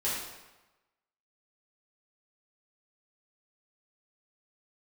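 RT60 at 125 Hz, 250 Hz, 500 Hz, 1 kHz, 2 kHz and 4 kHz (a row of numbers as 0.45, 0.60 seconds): 1.0, 1.0, 1.0, 1.1, 1.0, 0.85 seconds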